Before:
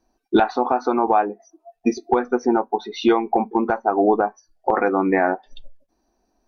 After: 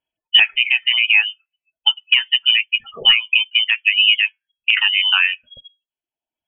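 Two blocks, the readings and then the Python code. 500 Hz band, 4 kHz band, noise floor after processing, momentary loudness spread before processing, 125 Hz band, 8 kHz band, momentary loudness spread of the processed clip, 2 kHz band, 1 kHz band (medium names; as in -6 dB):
-25.5 dB, +27.5 dB, under -85 dBFS, 7 LU, under -15 dB, no reading, 6 LU, +15.0 dB, -17.0 dB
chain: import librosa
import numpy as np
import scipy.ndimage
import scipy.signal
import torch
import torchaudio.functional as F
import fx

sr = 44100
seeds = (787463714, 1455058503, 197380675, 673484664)

y = fx.freq_invert(x, sr, carrier_hz=3300)
y = fx.env_lowpass(y, sr, base_hz=660.0, full_db=-15.5)
y = fx.dereverb_blind(y, sr, rt60_s=0.84)
y = y * librosa.db_to_amplitude(4.0)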